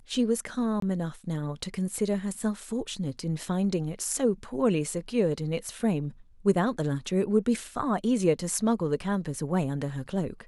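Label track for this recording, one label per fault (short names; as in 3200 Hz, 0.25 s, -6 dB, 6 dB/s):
0.800000	0.820000	gap 23 ms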